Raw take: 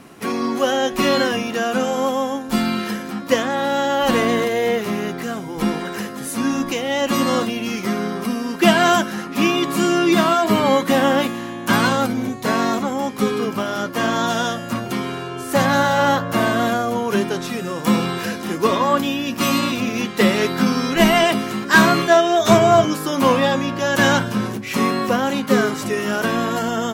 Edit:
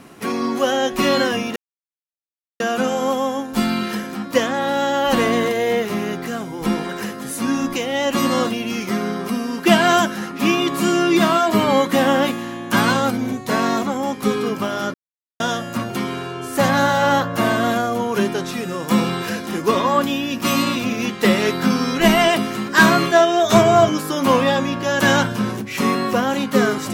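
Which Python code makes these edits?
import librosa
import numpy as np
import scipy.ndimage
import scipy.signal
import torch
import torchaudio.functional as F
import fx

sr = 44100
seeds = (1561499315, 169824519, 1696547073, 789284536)

y = fx.edit(x, sr, fx.insert_silence(at_s=1.56, length_s=1.04),
    fx.silence(start_s=13.9, length_s=0.46), tone=tone)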